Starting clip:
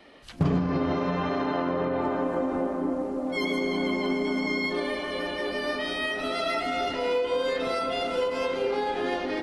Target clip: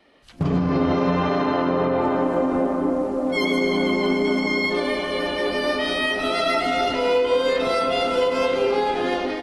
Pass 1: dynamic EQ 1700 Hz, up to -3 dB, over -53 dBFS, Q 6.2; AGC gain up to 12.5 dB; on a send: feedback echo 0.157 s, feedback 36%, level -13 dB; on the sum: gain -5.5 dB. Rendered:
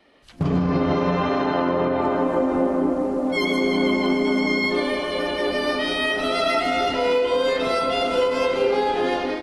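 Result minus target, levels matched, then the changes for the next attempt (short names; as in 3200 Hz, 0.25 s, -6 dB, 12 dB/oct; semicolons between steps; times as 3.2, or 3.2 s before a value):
echo 0.104 s early
change: feedback echo 0.261 s, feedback 36%, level -13 dB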